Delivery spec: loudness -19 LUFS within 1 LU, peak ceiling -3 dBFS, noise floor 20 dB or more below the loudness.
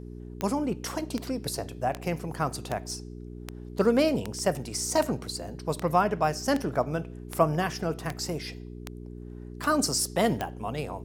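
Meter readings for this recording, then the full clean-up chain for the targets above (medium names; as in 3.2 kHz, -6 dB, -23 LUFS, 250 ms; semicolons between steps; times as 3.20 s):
clicks found 14; hum 60 Hz; highest harmonic 420 Hz; hum level -38 dBFS; loudness -29.0 LUFS; peak level -8.0 dBFS; loudness target -19.0 LUFS
-> de-click; de-hum 60 Hz, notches 7; trim +10 dB; peak limiter -3 dBFS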